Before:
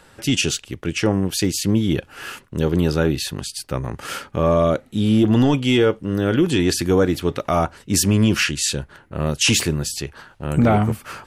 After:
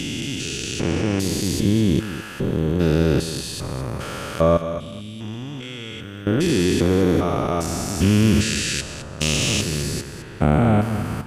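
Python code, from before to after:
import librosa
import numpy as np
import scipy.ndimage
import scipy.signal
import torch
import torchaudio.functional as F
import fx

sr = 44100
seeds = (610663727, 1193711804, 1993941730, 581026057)

y = fx.spec_steps(x, sr, hold_ms=400)
y = fx.tone_stack(y, sr, knobs='5-5-5', at=(4.57, 6.27))
y = fx.echo_feedback(y, sr, ms=211, feedback_pct=22, wet_db=-12)
y = y * librosa.db_to_amplitude(3.0)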